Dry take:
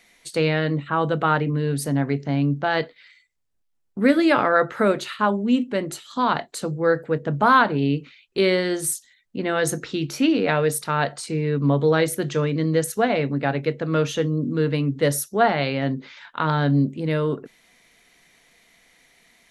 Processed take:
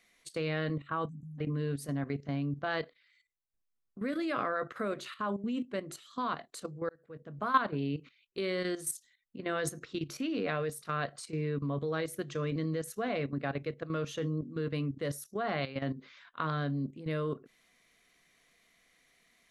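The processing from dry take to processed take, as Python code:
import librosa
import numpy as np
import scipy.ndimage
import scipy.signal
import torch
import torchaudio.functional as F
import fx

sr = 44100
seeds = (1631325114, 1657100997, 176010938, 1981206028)

y = fx.spec_erase(x, sr, start_s=1.09, length_s=0.3, low_hz=300.0, high_hz=5900.0)
y = fx.edit(y, sr, fx.fade_in_span(start_s=6.89, length_s=0.78), tone=tone)
y = fx.peak_eq(y, sr, hz=1100.0, db=5.5, octaves=0.29)
y = fx.notch(y, sr, hz=890.0, q=5.4)
y = fx.level_steps(y, sr, step_db=12)
y = F.gain(torch.from_numpy(y), -8.5).numpy()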